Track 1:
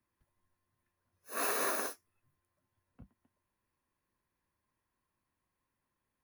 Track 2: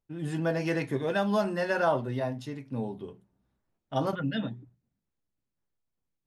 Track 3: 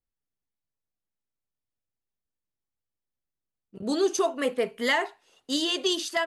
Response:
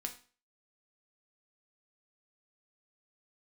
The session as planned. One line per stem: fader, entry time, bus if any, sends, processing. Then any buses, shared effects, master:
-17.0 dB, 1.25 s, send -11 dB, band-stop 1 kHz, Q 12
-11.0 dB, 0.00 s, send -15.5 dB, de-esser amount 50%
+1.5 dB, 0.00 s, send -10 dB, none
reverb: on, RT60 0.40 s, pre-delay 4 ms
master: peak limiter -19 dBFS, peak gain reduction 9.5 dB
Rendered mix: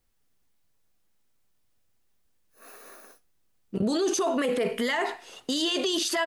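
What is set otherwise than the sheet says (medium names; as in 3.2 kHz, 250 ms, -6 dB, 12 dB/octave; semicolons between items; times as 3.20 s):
stem 2: muted; stem 3 +1.5 dB -> +13.5 dB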